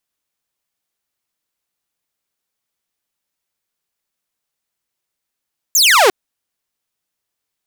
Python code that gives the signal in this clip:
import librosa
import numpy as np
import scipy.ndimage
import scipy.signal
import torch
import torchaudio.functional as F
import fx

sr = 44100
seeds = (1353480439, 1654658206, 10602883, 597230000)

y = fx.laser_zap(sr, level_db=-5, start_hz=7600.0, end_hz=350.0, length_s=0.35, wave='saw')